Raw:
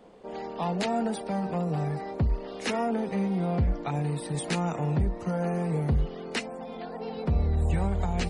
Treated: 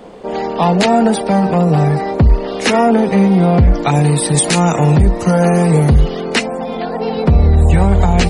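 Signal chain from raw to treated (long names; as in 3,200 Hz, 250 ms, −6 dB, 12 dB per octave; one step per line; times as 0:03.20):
0:03.74–0:06.21: high-shelf EQ 4,600 Hz +10.5 dB
boost into a limiter +18 dB
level −1 dB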